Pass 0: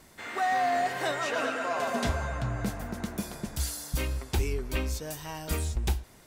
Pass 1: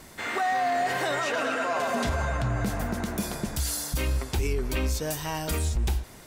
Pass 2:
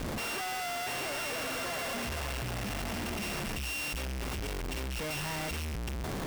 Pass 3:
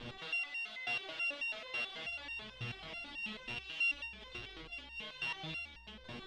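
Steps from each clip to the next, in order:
peak limiter -26.5 dBFS, peak gain reduction 8.5 dB; trim +7.5 dB
sorted samples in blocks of 16 samples; Schmitt trigger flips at -46 dBFS; trim -7.5 dB
resonant low-pass 3.5 kHz, resonance Q 3.6; resonator arpeggio 9.2 Hz 120–920 Hz

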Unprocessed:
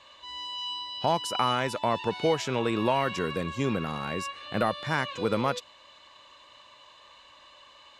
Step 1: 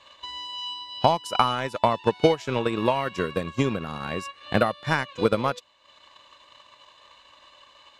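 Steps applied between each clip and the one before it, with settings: transient shaper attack +10 dB, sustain -8 dB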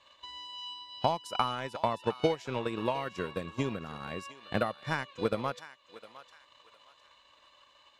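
thinning echo 708 ms, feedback 34%, high-pass 870 Hz, level -14 dB; trim -8.5 dB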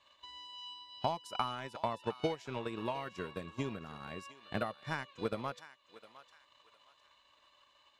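band-stop 510 Hz, Q 12; trim -5.5 dB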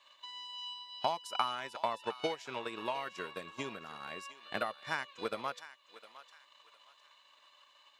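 high-pass 780 Hz 6 dB/octave; trim +4.5 dB

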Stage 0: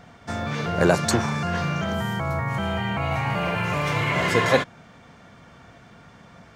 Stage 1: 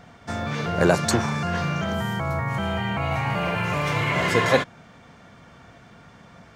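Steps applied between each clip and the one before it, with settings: no audible change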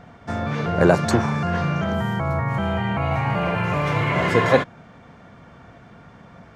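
treble shelf 2.8 kHz -11 dB; trim +3.5 dB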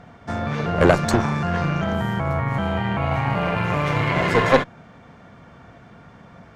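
Chebyshev shaper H 4 -14 dB, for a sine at -2 dBFS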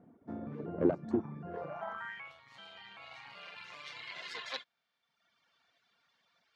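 band-pass sweep 300 Hz -> 4.2 kHz, 1.45–2.43 s; reverb removal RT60 1.1 s; trim -6 dB

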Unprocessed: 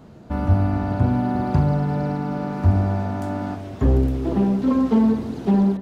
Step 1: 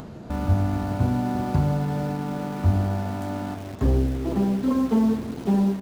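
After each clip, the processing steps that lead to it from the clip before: in parallel at -9 dB: bit crusher 5-bit; on the sum: upward compressor, threshold -22 dBFS; trim -6 dB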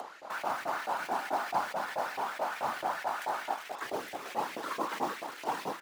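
whisper effect; LFO high-pass saw up 4.6 Hz 640–2300 Hz; attacks held to a fixed rise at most 290 dB/s

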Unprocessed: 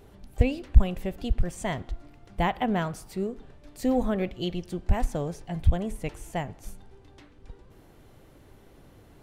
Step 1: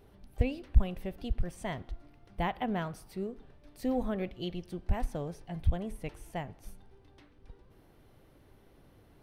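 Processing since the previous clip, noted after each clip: peaking EQ 7.2 kHz -10 dB 0.29 oct; trim -6.5 dB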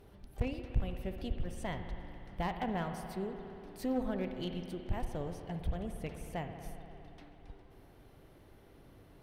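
in parallel at +1 dB: compression, threshold -40 dBFS, peak gain reduction 23.5 dB; on the sum: one-sided clip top -29.5 dBFS; spring tank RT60 3.3 s, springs 58 ms, chirp 35 ms, DRR 6 dB; trim -5.5 dB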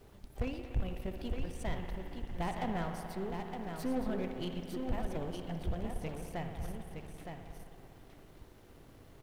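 partial rectifier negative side -7 dB; added noise pink -72 dBFS; delay 916 ms -6 dB; trim +2.5 dB

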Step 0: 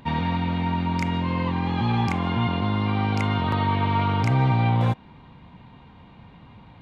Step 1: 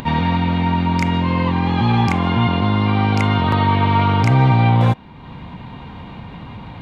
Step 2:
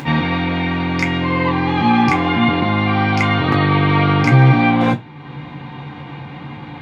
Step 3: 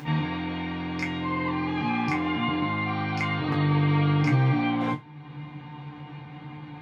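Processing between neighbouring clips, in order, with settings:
upward compressor, threshold -32 dBFS; trim +7 dB
reverberation RT60 0.20 s, pre-delay 3 ms, DRR 1 dB; trim -3.5 dB
feedback comb 150 Hz, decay 0.19 s, harmonics all, mix 80%; trim -4 dB

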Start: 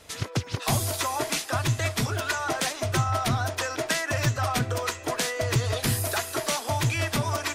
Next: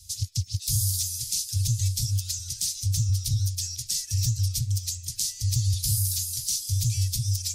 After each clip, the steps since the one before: Chebyshev band-stop 100–5000 Hz, order 3; in parallel at +1.5 dB: peak limiter -24 dBFS, peak gain reduction 8.5 dB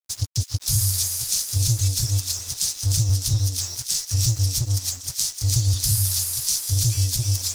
crossover distortion -40 dBFS; feedback echo behind a high-pass 303 ms, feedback 52%, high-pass 1.7 kHz, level -5 dB; trim +5 dB

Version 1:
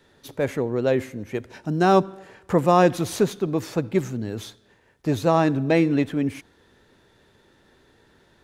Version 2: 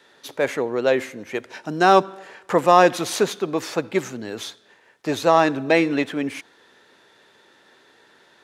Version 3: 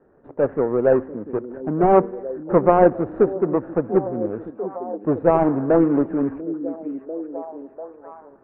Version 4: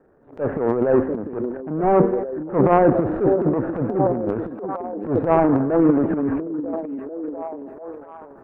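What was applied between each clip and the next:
frequency weighting A; in parallel at -10.5 dB: overload inside the chain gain 13.5 dB; on the sum: trim +3.5 dB
median filter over 41 samples; inverse Chebyshev low-pass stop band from 7.6 kHz, stop band 80 dB; repeats whose band climbs or falls 693 ms, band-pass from 260 Hz, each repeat 0.7 oct, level -9.5 dB; trim +5 dB
transient shaper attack -10 dB, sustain +11 dB

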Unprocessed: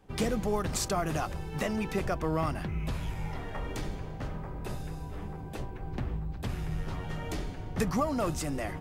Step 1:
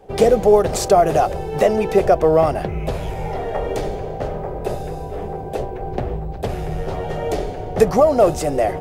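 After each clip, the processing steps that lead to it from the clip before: high-order bell 550 Hz +12.5 dB 1.3 oct; trim +7.5 dB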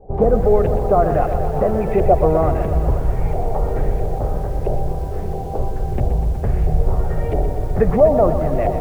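RIAA curve playback; LFO low-pass saw up 1.5 Hz 650–2600 Hz; bit-crushed delay 123 ms, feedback 80%, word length 6-bit, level -10 dB; trim -7 dB

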